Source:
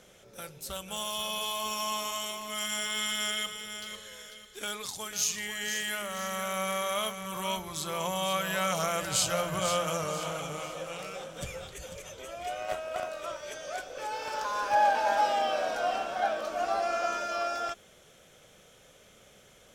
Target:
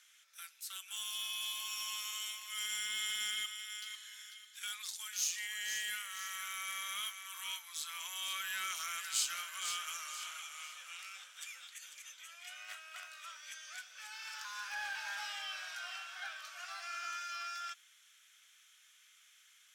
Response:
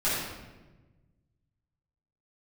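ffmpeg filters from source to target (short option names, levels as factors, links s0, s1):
-filter_complex "[0:a]highpass=f=1500:w=0.5412,highpass=f=1500:w=1.3066,asplit=2[s0][s1];[s1]aeval=exprs='0.0237*(abs(mod(val(0)/0.0237+3,4)-2)-1)':c=same,volume=0.282[s2];[s0][s2]amix=inputs=2:normalize=0,volume=0.501"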